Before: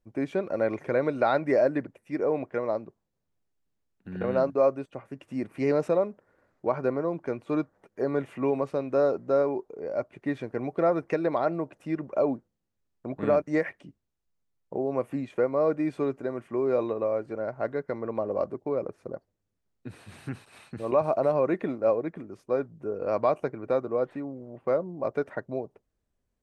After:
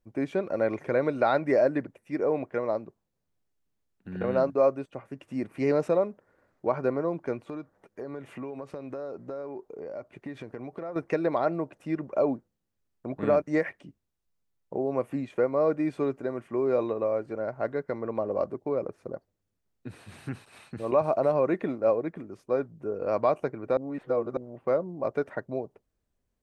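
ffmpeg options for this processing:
ffmpeg -i in.wav -filter_complex "[0:a]asettb=1/sr,asplit=3[link_01][link_02][link_03];[link_01]atrim=end=7.444[link_04];[link_02]atrim=start=7.44:end=10.96,asetpts=PTS-STARTPTS,afade=type=in:duration=0.004:curve=qsin,afade=type=out:start_time=3.516:duration=0.004:curve=qsin,acompressor=threshold=-34dB:ratio=6:attack=3.2:release=140:knee=1:detection=peak[link_05];[link_03]atrim=start=10.956[link_06];[link_04][link_05]acrossfade=duration=0.004:curve1=hsin:curve2=qsin[link_07];[link_07][link_06]acrossfade=duration=0.004:curve1=qsin:curve2=hsin,asplit=3[link_08][link_09][link_10];[link_08]atrim=end=23.772[link_11];[link_09]atrim=start=23.768:end=24.372,asetpts=PTS-STARTPTS,areverse[link_12];[link_10]atrim=start=24.368[link_13];[link_11][link_12]acrossfade=duration=0.004:curve1=hsin:curve2=hsin[link_14];[link_14][link_13]acrossfade=duration=0.004:curve1=hsin:curve2=hsin" out.wav

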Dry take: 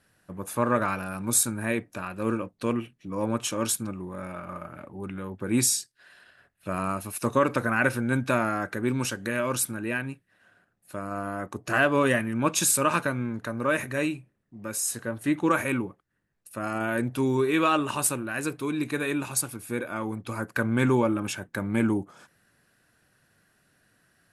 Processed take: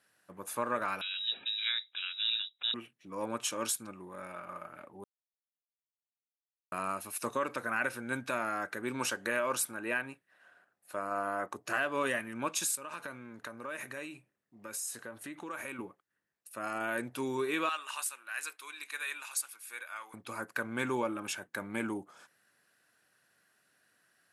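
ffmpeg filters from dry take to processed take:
ffmpeg -i in.wav -filter_complex "[0:a]asettb=1/sr,asplit=3[link_01][link_02][link_03];[link_01]atrim=end=1.014[link_04];[link_02]atrim=start=1.01:end=2.74,asetpts=PTS-STARTPTS,afade=type=in:duration=0.004:curve=qsin,afade=type=out:start_time=1.726:duration=0.004:curve=qsin,lowpass=frequency=3400:width_type=q:width=0.5098,lowpass=frequency=3400:width_type=q:width=0.6013,lowpass=frequency=3400:width_type=q:width=0.9,lowpass=frequency=3400:width_type=q:width=2.563,afreqshift=-4000[link_05];[link_03]atrim=start=2.736[link_06];[link_04][link_05]acrossfade=duration=0.004:curve1=hsin:curve2=qsin[link_07];[link_07][link_06]acrossfade=duration=0.004:curve1=qsin:curve2=hsin,asettb=1/sr,asplit=3[link_08][link_09][link_10];[link_08]atrim=end=8.944[link_11];[link_09]atrim=start=8.94:end=11.55,asetpts=PTS-STARTPTS,afade=type=in:duration=0.004:curve=qsin,afade=type=out:start_time=2.606:duration=0.004:curve=qsin,equalizer=frequency=790:width_type=o:width=2.5:gain=6[link_12];[link_10]atrim=start=11.546[link_13];[link_11][link_12]acrossfade=duration=0.004:curve1=hsin:curve2=qsin[link_14];[link_14][link_13]acrossfade=duration=0.004:curve1=qsin:curve2=hsin,asettb=1/sr,asplit=3[link_15][link_16][link_17];[link_15]atrim=end=12.754[link_18];[link_16]atrim=start=12.75:end=15.79,asetpts=PTS-STARTPTS,afade=type=in:duration=0.004:curve=qsin,afade=type=out:start_time=3.036:duration=0.004:curve=qsin,acompressor=threshold=-31dB:ratio=5:attack=3.2:release=140:knee=1:detection=peak[link_19];[link_17]atrim=start=15.786[link_20];[link_18][link_19]acrossfade=duration=0.004:curve1=hsin:curve2=qsin[link_21];[link_21][link_20]acrossfade=duration=0.004:curve1=qsin:curve2=hsin,asettb=1/sr,asplit=3[link_22][link_23][link_24];[link_22]atrim=end=17.694[link_25];[link_23]atrim=start=17.69:end=20.14,asetpts=PTS-STARTPTS,afade=type=in:duration=0.004:curve=qsin,afade=type=out:start_time=2.446:duration=0.004:curve=qsin,highpass=1300[link_26];[link_24]atrim=start=20.136[link_27];[link_25][link_26]acrossfade=duration=0.004:curve1=hsin:curve2=qsin[link_28];[link_28][link_27]acrossfade=duration=0.004:curve1=qsin:curve2=hsin,asplit=3[link_29][link_30][link_31];[link_29]atrim=end=5.04,asetpts=PTS-STARTPTS,afade=type=out:start_time=5.036:duration=0.004:curve=hsin[link_32];[link_30]atrim=start=5.04:end=6.72,asetpts=PTS-STARTPTS,volume=0[link_33];[link_31]atrim=start=6.72,asetpts=PTS-STARTPTS,afade=type=in:duration=0.004:curve=hsin[link_34];[link_32][link_33][link_34]concat=n=3:v=0:a=1,highpass=frequency=610:poles=1,alimiter=limit=-17dB:level=0:latency=1:release=296,volume=-3.5dB" out.wav

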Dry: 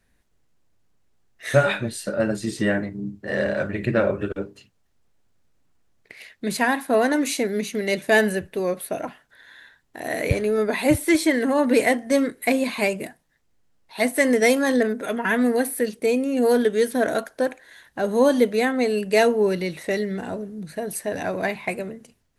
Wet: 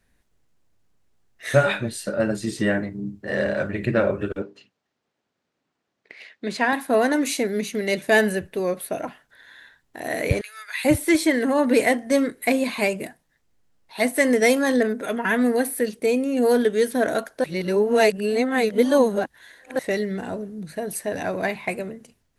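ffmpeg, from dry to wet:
ffmpeg -i in.wav -filter_complex "[0:a]asettb=1/sr,asplit=3[link_01][link_02][link_03];[link_01]atrim=end=4.424[link_04];[link_02]atrim=start=4.42:end=6.73,asetpts=PTS-STARTPTS,afade=type=in:duration=0.004:curve=qsin,afade=type=out:start_time=2.306:duration=0.004:curve=qsin,highpass=220,lowpass=5000[link_05];[link_03]atrim=start=6.726[link_06];[link_04][link_05]acrossfade=duration=0.004:curve1=hsin:curve2=qsin[link_07];[link_07][link_06]acrossfade=duration=0.004:curve1=qsin:curve2=hsin,asettb=1/sr,asplit=3[link_08][link_09][link_10];[link_08]atrim=end=10.414[link_11];[link_09]atrim=start=10.41:end=10.85,asetpts=PTS-STARTPTS,afade=type=in:duration=0.004:curve=qsin,afade=type=out:start_time=0.436:duration=0.004:curve=qsin,highpass=frequency=1500:width=0.5412,highpass=frequency=1500:width=1.3066[link_12];[link_10]atrim=start=10.846[link_13];[link_11][link_12]acrossfade=duration=0.004:curve1=hsin:curve2=qsin[link_14];[link_14][link_13]acrossfade=duration=0.004:curve1=qsin:curve2=hsin,asplit=3[link_15][link_16][link_17];[link_15]atrim=end=17.442[link_18];[link_16]atrim=start=17.438:end=19.792,asetpts=PTS-STARTPTS,areverse[link_19];[link_17]atrim=start=19.788[link_20];[link_18][link_19]acrossfade=duration=0.004:curve1=hsin:curve2=hsin[link_21];[link_21][link_20]acrossfade=duration=0.004:curve1=hsin:curve2=hsin" out.wav

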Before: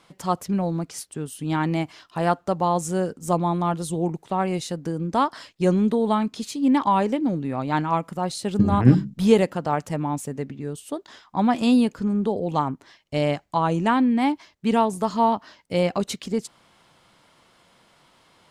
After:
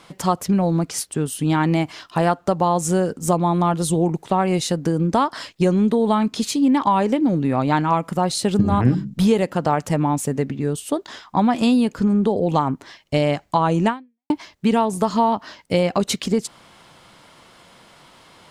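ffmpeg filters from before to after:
ffmpeg -i in.wav -filter_complex "[0:a]asplit=2[link_01][link_02];[link_01]atrim=end=14.3,asetpts=PTS-STARTPTS,afade=type=out:start_time=13.88:duration=0.42:curve=exp[link_03];[link_02]atrim=start=14.3,asetpts=PTS-STARTPTS,afade=type=in:duration=0.004:curve=hsin[link_04];[link_03][link_04]concat=n=2:v=0:a=1,acompressor=threshold=-24dB:ratio=4,volume=9dB" out.wav

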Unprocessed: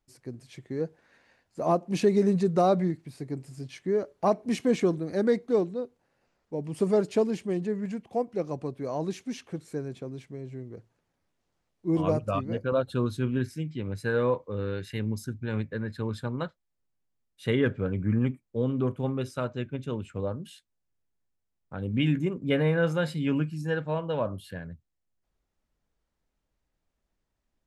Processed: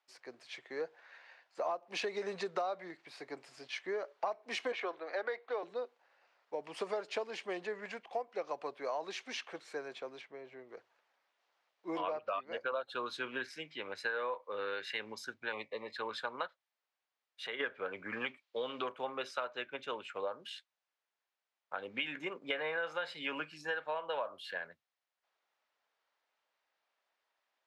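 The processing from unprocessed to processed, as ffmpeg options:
ffmpeg -i in.wav -filter_complex "[0:a]asettb=1/sr,asplit=3[link_01][link_02][link_03];[link_01]atrim=end=4.724[link_04];[link_02]atrim=start=4.72:end=5.63,asetpts=PTS-STARTPTS,afade=type=in:duration=0.004:curve=qsin,afade=type=out:start_time=0.906:duration=0.004:curve=qsin,acrossover=split=380 4000:gain=0.126 1 0.141[link_05][link_06][link_07];[link_05][link_06][link_07]amix=inputs=3:normalize=0[link_08];[link_03]atrim=start=5.626[link_09];[link_04][link_08]acrossfade=duration=0.004:curve1=hsin:curve2=qsin[link_10];[link_10][link_09]acrossfade=duration=0.004:curve1=qsin:curve2=hsin,asettb=1/sr,asplit=3[link_11][link_12][link_13];[link_11]atrim=end=10.214[link_14];[link_12]atrim=start=10.21:end=10.69,asetpts=PTS-STARTPTS,afade=type=in:duration=0.004:curve=qsin,afade=type=out:start_time=0.476:duration=0.004:curve=qsin,lowpass=frequency=2200:poles=1[link_15];[link_13]atrim=start=10.686[link_16];[link_14][link_15]acrossfade=duration=0.004:curve1=hsin:curve2=qsin[link_17];[link_17][link_16]acrossfade=duration=0.004:curve1=qsin:curve2=hsin,asettb=1/sr,asplit=3[link_18][link_19][link_20];[link_18]atrim=end=11.984[link_21];[link_19]atrim=start=11.98:end=12.47,asetpts=PTS-STARTPTS,afade=type=in:duration=0.004:curve=qsin,afade=type=out:start_time=0.486:duration=0.004:curve=qsin,lowpass=frequency=4600:width=0.5412,lowpass=frequency=4600:width=1.3066[link_22];[link_20]atrim=start=12.466[link_23];[link_21][link_22]acrossfade=duration=0.004:curve1=hsin:curve2=qsin[link_24];[link_24][link_23]acrossfade=duration=0.004:curve1=qsin:curve2=hsin,asettb=1/sr,asplit=3[link_25][link_26][link_27];[link_25]atrim=end=15.524[link_28];[link_26]atrim=start=15.52:end=15.96,asetpts=PTS-STARTPTS,afade=type=in:duration=0.004:curve=qsin,afade=type=out:start_time=0.436:duration=0.004:curve=qsin,asuperstop=centerf=1500:order=8:qfactor=2.1[link_29];[link_27]atrim=start=15.956[link_30];[link_28][link_29]acrossfade=duration=0.004:curve1=hsin:curve2=qsin[link_31];[link_31][link_30]acrossfade=duration=0.004:curve1=qsin:curve2=hsin,asplit=3[link_32][link_33][link_34];[link_32]afade=type=out:start_time=16.46:duration=0.02[link_35];[link_33]acompressor=threshold=-43dB:ratio=2:attack=3.2:release=140:knee=1:detection=peak,afade=type=in:start_time=16.46:duration=0.02,afade=type=out:start_time=17.59:duration=0.02[link_36];[link_34]afade=type=in:start_time=17.59:duration=0.02[link_37];[link_35][link_36][link_37]amix=inputs=3:normalize=0,asettb=1/sr,asplit=3[link_38][link_39][link_40];[link_38]atrim=end=18.134[link_41];[link_39]atrim=start=18.13:end=18.89,asetpts=PTS-STARTPTS,afade=type=in:duration=0.004:curve=qsin,afade=type=out:start_time=0.756:duration=0.004:curve=qsin,equalizer=frequency=3700:width_type=o:width=1.6:gain=10.5[link_42];[link_40]atrim=start=18.886[link_43];[link_41][link_42]acrossfade=duration=0.004:curve1=hsin:curve2=qsin[link_44];[link_44][link_43]acrossfade=duration=0.004:curve1=qsin:curve2=hsin,highpass=360,acrossover=split=600 5000:gain=0.1 1 0.0891[link_45][link_46][link_47];[link_45][link_46][link_47]amix=inputs=3:normalize=0,acompressor=threshold=-40dB:ratio=8,volume=6.5dB" out.wav

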